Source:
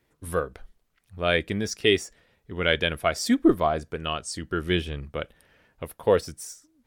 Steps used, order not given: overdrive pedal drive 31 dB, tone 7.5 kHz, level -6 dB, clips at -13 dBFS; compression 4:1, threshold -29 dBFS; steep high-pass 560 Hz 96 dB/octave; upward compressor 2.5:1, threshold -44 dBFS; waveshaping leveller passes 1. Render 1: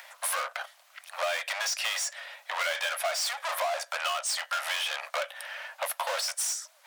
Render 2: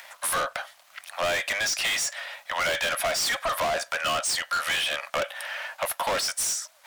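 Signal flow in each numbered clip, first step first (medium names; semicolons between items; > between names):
waveshaping leveller > overdrive pedal > upward compressor > steep high-pass > compression; steep high-pass > overdrive pedal > compression > waveshaping leveller > upward compressor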